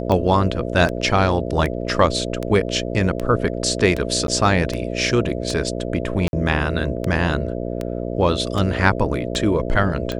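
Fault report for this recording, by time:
mains buzz 60 Hz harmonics 11 −26 dBFS
scratch tick 78 rpm −11 dBFS
0:04.27–0:04.28: drop-out 12 ms
0:06.28–0:06.33: drop-out 51 ms

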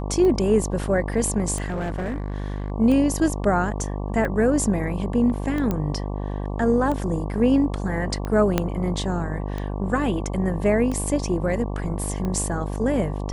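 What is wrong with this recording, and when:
mains buzz 50 Hz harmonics 23 −28 dBFS
scratch tick 45 rpm −17 dBFS
0:01.64–0:02.72: clipping −23.5 dBFS
0:05.71: click −12 dBFS
0:08.58: click −6 dBFS

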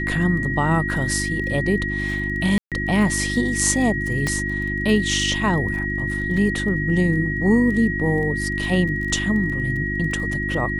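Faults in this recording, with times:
surface crackle 20 per second −30 dBFS
mains hum 50 Hz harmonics 7 −27 dBFS
whistle 1,900 Hz −25 dBFS
0:02.58–0:02.72: drop-out 137 ms
0:04.27: click −10 dBFS
0:06.37: drop-out 2.4 ms

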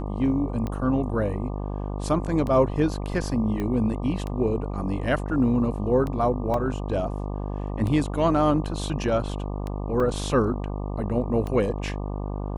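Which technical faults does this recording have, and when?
mains buzz 50 Hz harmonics 24 −30 dBFS
scratch tick 33 1/3 rpm −19 dBFS
0:03.60: click −18 dBFS
0:06.54: drop-out 2.6 ms
0:10.00: drop-out 2.9 ms

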